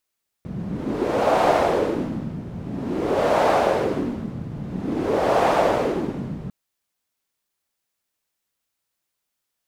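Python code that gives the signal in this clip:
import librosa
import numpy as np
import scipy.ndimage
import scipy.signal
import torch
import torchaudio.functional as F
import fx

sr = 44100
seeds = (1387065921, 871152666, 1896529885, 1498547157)

y = fx.wind(sr, seeds[0], length_s=6.05, low_hz=160.0, high_hz=690.0, q=2.3, gusts=3, swing_db=13.5)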